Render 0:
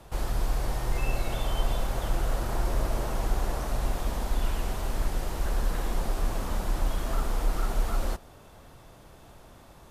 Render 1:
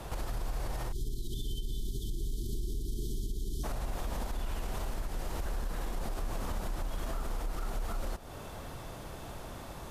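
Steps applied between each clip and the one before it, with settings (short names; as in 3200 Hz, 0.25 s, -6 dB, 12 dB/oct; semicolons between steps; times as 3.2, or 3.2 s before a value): spectral delete 0.92–3.64, 450–3000 Hz; compressor 4:1, threshold -37 dBFS, peak gain reduction 15.5 dB; limiter -34.5 dBFS, peak gain reduction 7 dB; gain +7.5 dB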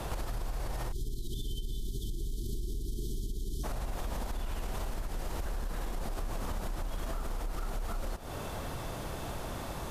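compressor, threshold -37 dBFS, peak gain reduction 7.5 dB; gain +5.5 dB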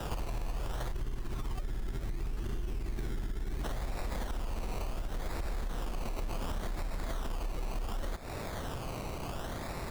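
decimation with a swept rate 20×, swing 60% 0.69 Hz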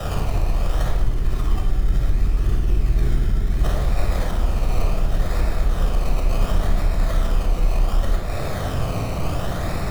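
reverb RT60 1.0 s, pre-delay 23 ms, DRR 0 dB; gain +6.5 dB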